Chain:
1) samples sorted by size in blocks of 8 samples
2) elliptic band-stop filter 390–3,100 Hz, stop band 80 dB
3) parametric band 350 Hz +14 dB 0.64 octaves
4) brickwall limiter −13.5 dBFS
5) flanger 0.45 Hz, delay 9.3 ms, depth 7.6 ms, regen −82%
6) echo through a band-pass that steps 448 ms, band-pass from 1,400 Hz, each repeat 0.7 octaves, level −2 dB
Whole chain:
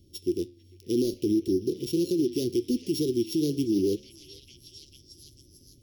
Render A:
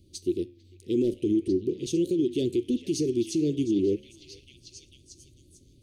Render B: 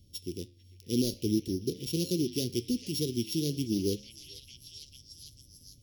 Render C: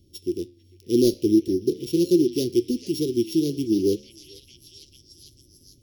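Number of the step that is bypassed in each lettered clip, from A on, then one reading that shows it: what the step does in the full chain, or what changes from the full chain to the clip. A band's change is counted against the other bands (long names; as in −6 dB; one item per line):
1, distortion level −10 dB
3, 500 Hz band −9.0 dB
4, average gain reduction 2.0 dB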